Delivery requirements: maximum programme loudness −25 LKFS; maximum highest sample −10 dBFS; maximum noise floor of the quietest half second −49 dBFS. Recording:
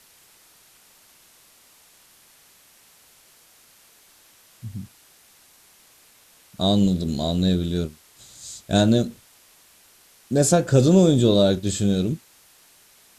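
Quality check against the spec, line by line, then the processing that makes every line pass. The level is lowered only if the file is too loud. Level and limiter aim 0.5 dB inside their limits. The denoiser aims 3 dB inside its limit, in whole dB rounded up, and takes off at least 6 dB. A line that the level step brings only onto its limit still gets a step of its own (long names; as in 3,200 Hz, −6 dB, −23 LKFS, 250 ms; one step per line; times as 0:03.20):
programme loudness −20.5 LKFS: out of spec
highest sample −4.5 dBFS: out of spec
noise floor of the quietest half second −55 dBFS: in spec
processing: level −5 dB
brickwall limiter −10.5 dBFS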